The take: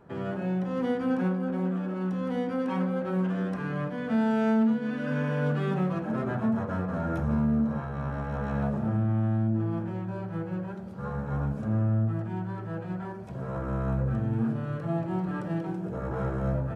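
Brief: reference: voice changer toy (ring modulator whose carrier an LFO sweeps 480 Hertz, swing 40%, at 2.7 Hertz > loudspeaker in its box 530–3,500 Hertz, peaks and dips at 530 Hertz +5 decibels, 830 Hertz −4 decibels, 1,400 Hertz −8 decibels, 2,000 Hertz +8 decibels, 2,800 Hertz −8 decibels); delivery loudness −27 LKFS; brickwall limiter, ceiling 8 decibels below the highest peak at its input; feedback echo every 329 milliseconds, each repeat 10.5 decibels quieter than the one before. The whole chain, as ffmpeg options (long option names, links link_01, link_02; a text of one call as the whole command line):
ffmpeg -i in.wav -af "alimiter=limit=-24dB:level=0:latency=1,aecho=1:1:329|658|987:0.299|0.0896|0.0269,aeval=exprs='val(0)*sin(2*PI*480*n/s+480*0.4/2.7*sin(2*PI*2.7*n/s))':channel_layout=same,highpass=530,equalizer=frequency=530:width_type=q:width=4:gain=5,equalizer=frequency=830:width_type=q:width=4:gain=-4,equalizer=frequency=1400:width_type=q:width=4:gain=-8,equalizer=frequency=2000:width_type=q:width=4:gain=8,equalizer=frequency=2800:width_type=q:width=4:gain=-8,lowpass=frequency=3500:width=0.5412,lowpass=frequency=3500:width=1.3066,volume=10.5dB" out.wav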